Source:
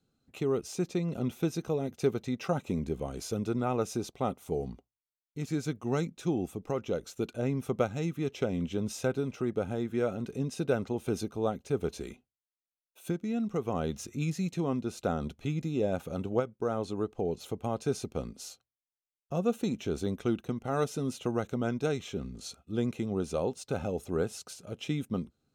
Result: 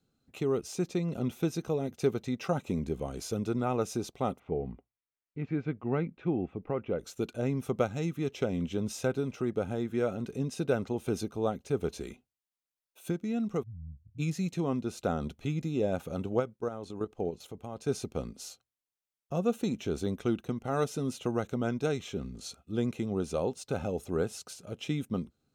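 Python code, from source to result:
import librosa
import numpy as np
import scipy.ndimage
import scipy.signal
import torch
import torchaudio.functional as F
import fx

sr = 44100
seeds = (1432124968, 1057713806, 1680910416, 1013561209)

y = fx.cheby1_lowpass(x, sr, hz=2400.0, order=3, at=(4.38, 6.98), fade=0.02)
y = fx.cheby2_lowpass(y, sr, hz=520.0, order=4, stop_db=70, at=(13.62, 14.18), fade=0.02)
y = fx.level_steps(y, sr, step_db=10, at=(16.56, 17.87), fade=0.02)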